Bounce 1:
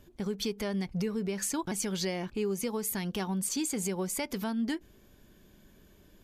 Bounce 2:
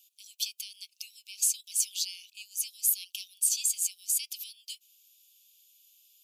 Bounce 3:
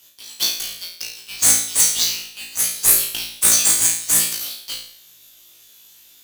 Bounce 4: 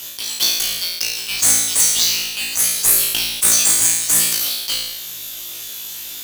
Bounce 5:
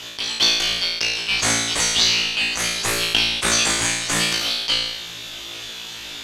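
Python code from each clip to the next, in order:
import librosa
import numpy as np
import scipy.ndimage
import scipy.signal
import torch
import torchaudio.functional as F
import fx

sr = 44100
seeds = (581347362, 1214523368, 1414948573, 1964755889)

y1 = scipy.signal.sosfilt(scipy.signal.butter(16, 2500.0, 'highpass', fs=sr, output='sos'), x)
y1 = fx.high_shelf(y1, sr, hz=5300.0, db=11.0)
y2 = fx.halfwave_hold(y1, sr)
y2 = fx.doubler(y2, sr, ms=18.0, db=-10.0)
y2 = fx.room_flutter(y2, sr, wall_m=3.0, rt60_s=0.56)
y2 = y2 * 10.0 ** (6.0 / 20.0)
y3 = fx.env_flatten(y2, sr, amount_pct=50)
y3 = y3 * 10.0 ** (-1.0 / 20.0)
y4 = scipy.signal.sosfilt(scipy.signal.butter(2, 3500.0, 'lowpass', fs=sr, output='sos'), y3)
y4 = y4 * 10.0 ** (6.0 / 20.0)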